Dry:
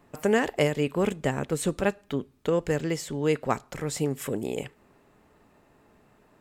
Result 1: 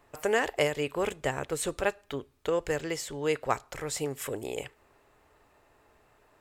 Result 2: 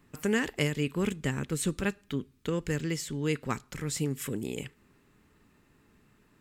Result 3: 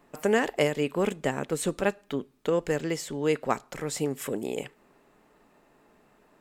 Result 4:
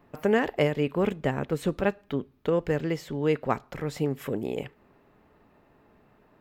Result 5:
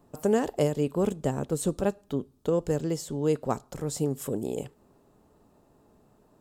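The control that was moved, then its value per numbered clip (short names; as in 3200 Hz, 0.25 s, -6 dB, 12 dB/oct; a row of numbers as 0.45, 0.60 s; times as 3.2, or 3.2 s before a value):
bell, frequency: 200, 670, 81, 8300, 2100 Hz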